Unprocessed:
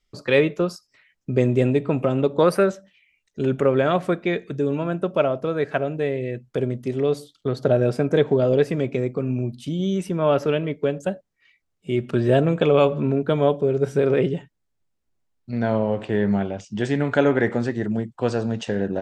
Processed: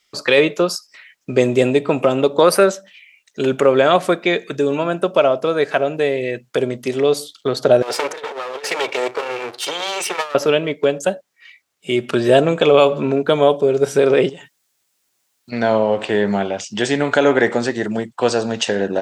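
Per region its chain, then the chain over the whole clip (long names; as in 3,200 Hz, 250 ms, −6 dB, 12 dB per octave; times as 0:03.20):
0:07.82–0:10.35: lower of the sound and its delayed copy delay 2.2 ms + meter weighting curve A + compressor whose output falls as the input rises −30 dBFS, ratio −0.5
0:14.29–0:15.52: high-shelf EQ 4,000 Hz +9.5 dB + downward compressor 3 to 1, threshold −40 dBFS
whole clip: dynamic equaliser 1,800 Hz, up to −7 dB, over −37 dBFS, Q 0.8; high-pass filter 1,200 Hz 6 dB per octave; boost into a limiter +17 dB; level −1 dB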